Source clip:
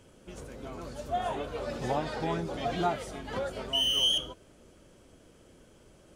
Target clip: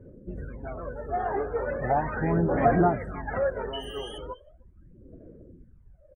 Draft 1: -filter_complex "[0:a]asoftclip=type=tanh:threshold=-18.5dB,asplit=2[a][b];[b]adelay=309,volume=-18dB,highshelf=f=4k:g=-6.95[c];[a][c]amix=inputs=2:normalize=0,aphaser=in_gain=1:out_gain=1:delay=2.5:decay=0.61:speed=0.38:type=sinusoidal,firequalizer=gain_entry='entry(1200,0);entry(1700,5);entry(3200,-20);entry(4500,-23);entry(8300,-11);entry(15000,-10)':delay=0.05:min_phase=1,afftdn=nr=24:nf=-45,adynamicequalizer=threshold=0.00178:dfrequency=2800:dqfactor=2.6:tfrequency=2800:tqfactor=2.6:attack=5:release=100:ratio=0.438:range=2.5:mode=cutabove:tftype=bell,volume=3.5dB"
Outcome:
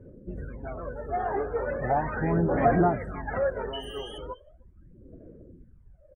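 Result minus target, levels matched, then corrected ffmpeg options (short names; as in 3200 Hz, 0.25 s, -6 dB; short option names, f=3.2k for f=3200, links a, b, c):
soft clip: distortion +16 dB
-filter_complex "[0:a]asoftclip=type=tanh:threshold=-9.5dB,asplit=2[a][b];[b]adelay=309,volume=-18dB,highshelf=f=4k:g=-6.95[c];[a][c]amix=inputs=2:normalize=0,aphaser=in_gain=1:out_gain=1:delay=2.5:decay=0.61:speed=0.38:type=sinusoidal,firequalizer=gain_entry='entry(1200,0);entry(1700,5);entry(3200,-20);entry(4500,-23);entry(8300,-11);entry(15000,-10)':delay=0.05:min_phase=1,afftdn=nr=24:nf=-45,adynamicequalizer=threshold=0.00178:dfrequency=2800:dqfactor=2.6:tfrequency=2800:tqfactor=2.6:attack=5:release=100:ratio=0.438:range=2.5:mode=cutabove:tftype=bell,volume=3.5dB"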